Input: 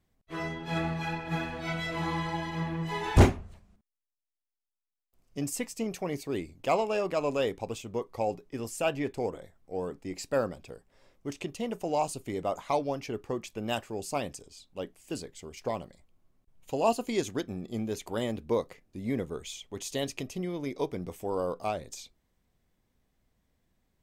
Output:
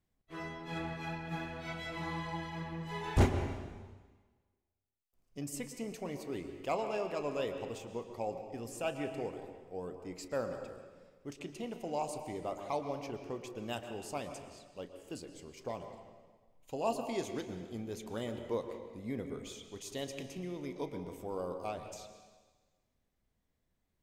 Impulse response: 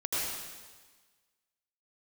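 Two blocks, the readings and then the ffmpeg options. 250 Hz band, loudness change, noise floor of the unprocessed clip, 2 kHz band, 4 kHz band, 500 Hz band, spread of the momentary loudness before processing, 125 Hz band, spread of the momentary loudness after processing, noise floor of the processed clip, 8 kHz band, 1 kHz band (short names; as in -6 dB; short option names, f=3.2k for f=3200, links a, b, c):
-7.0 dB, -7.0 dB, under -85 dBFS, -7.0 dB, -7.5 dB, -7.0 dB, 12 LU, -7.0 dB, 12 LU, -81 dBFS, -7.5 dB, -7.0 dB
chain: -filter_complex "[0:a]asplit=2[a][b];[b]highshelf=f=6.5k:g=-10.5[c];[1:a]atrim=start_sample=2205,adelay=34[d];[c][d]afir=irnorm=-1:irlink=0,volume=-13dB[e];[a][e]amix=inputs=2:normalize=0,volume=-8dB"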